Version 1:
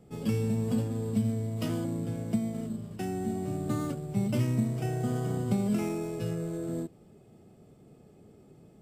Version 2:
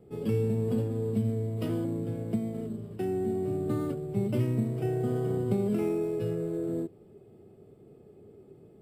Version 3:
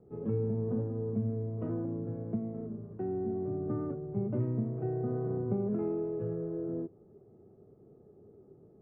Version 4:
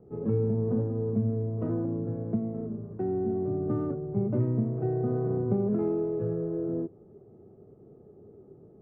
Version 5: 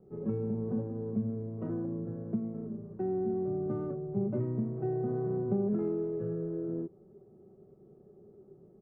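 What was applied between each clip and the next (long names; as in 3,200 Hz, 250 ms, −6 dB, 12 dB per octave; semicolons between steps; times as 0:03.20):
graphic EQ with 15 bands 100 Hz +5 dB, 400 Hz +11 dB, 6,300 Hz −11 dB; level −3.5 dB
low-pass filter 1,400 Hz 24 dB per octave; level −4 dB
adaptive Wiener filter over 9 samples; level +5 dB
comb filter 5.3 ms, depth 46%; level −5.5 dB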